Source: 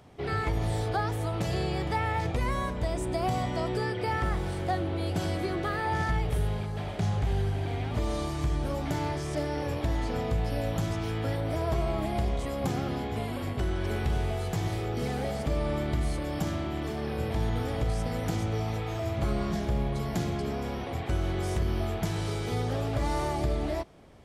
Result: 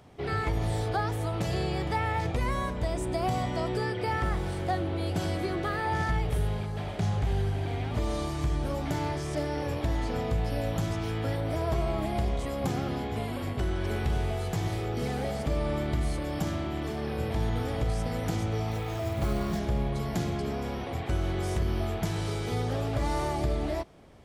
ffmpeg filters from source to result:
-filter_complex "[0:a]asettb=1/sr,asplit=3[s0][s1][s2];[s0]atrim=end=18.714[s3];[s1]atrim=start=18.71:end=19.59,asetpts=PTS-STARTPTS,afade=t=in:d=0.004:c=qsin,afade=t=out:st=0.876:d=0.004:c=qsin,acrusher=bits=6:mode=log:mix=0:aa=0.000001[s4];[s2]atrim=start=19.586[s5];[s3][s4]acrossfade=d=0.004:c1=hsin:c2=qsin[s6];[s6][s5]acrossfade=d=0.004:c1=qsin:c2=hsin"

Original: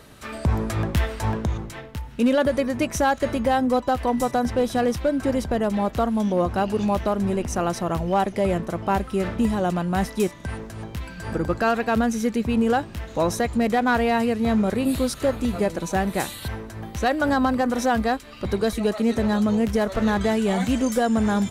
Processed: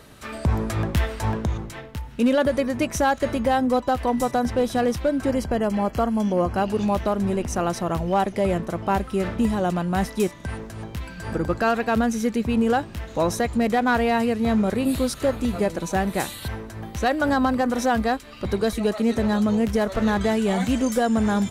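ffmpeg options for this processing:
-filter_complex "[0:a]asettb=1/sr,asplit=3[s0][s1][s2];[s0]atrim=end=5.314[s3];[s1]atrim=start=5.31:end=6.63,asetpts=PTS-STARTPTS,afade=t=in:d=0.004:c=qsin,afade=t=out:st=1.316:d=0.004:c=qsin,asuperstop=centerf=3700:order=12:qfactor=7.8[s4];[s2]atrim=start=6.626[s5];[s3][s4]acrossfade=d=0.004:c1=hsin:c2=qsin[s6];[s6][s5]acrossfade=d=0.004:c1=qsin:c2=hsin"

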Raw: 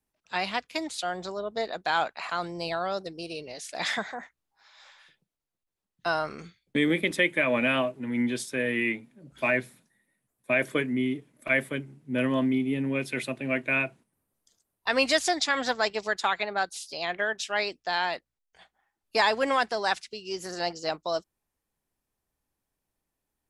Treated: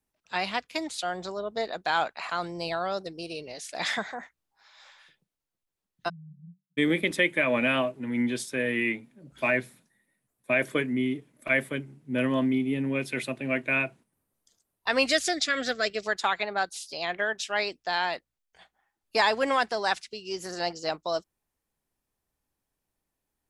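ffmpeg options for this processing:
-filter_complex "[0:a]asplit=3[s0][s1][s2];[s0]afade=t=out:st=6.08:d=0.02[s3];[s1]asuperpass=centerf=160:order=20:qfactor=2.6,afade=t=in:st=6.08:d=0.02,afade=t=out:st=6.77:d=0.02[s4];[s2]afade=t=in:st=6.77:d=0.02[s5];[s3][s4][s5]amix=inputs=3:normalize=0,asettb=1/sr,asplit=3[s6][s7][s8];[s6]atrim=end=15.074[s9];[s7]atrim=start=15.07:end=16.06,asetpts=PTS-STARTPTS,afade=t=in:d=0.004:c=qsin,afade=t=out:st=0.986:d=0.004:c=qsin,asuperstop=centerf=920:order=4:qfactor=1.7[s10];[s8]atrim=start=16.056[s11];[s9][s10]acrossfade=d=0.004:c1=hsin:c2=qsin[s12];[s12][s11]acrossfade=d=0.004:c1=qsin:c2=hsin"

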